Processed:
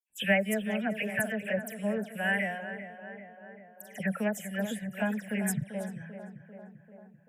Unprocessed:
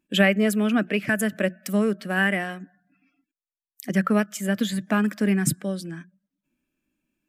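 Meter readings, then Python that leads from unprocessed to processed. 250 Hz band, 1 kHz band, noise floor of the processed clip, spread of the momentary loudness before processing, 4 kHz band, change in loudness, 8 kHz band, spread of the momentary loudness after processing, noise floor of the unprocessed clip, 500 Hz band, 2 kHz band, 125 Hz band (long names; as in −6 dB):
−10.0 dB, −7.0 dB, −57 dBFS, 13 LU, −9.5 dB, −8.0 dB, −7.5 dB, 21 LU, below −85 dBFS, −6.5 dB, −5.5 dB, −9.0 dB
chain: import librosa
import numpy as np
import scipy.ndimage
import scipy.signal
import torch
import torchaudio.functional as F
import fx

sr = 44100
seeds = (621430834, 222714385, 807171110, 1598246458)

y = fx.fixed_phaser(x, sr, hz=1200.0, stages=6)
y = fx.dispersion(y, sr, late='lows', ms=103.0, hz=3000.0)
y = fx.echo_tape(y, sr, ms=392, feedback_pct=72, wet_db=-9.5, lp_hz=1700.0, drive_db=3.0, wow_cents=22)
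y = F.gain(torch.from_numpy(y), -4.5).numpy()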